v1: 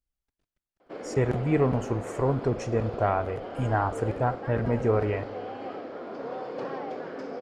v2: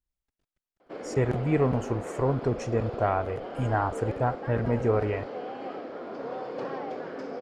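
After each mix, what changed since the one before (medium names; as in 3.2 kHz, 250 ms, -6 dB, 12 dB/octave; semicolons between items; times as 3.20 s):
reverb: off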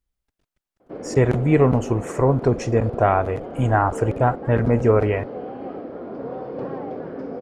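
speech +8.0 dB; background: add tilt EQ -4 dB/octave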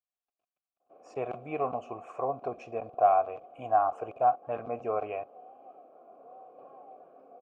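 background -9.5 dB; master: add vowel filter a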